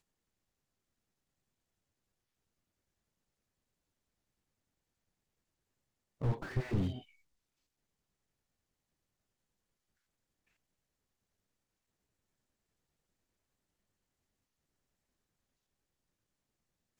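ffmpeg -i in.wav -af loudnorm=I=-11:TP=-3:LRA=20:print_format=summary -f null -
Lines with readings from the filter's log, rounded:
Input Integrated:    -36.8 LUFS
Input True Peak:     -19.3 dBTP
Input LRA:             0.0 LU
Input Threshold:     -47.6 LUFS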